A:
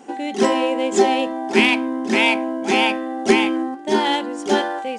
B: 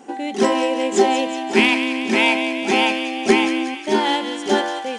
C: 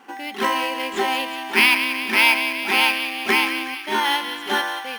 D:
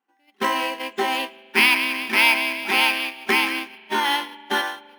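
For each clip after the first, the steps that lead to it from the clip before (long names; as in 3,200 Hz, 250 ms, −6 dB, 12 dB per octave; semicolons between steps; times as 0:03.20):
delay with a high-pass on its return 184 ms, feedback 61%, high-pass 1,700 Hz, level −7.5 dB
flat-topped bell 1,900 Hz +14.5 dB 2.4 octaves; in parallel at −6.5 dB: sample-rate reduction 7,300 Hz, jitter 0%; on the sum: level −13.5 dB
noise gate −25 dBFS, range −31 dB; on a send at −18.5 dB: convolution reverb RT60 2.6 s, pre-delay 41 ms; on the sum: level −1 dB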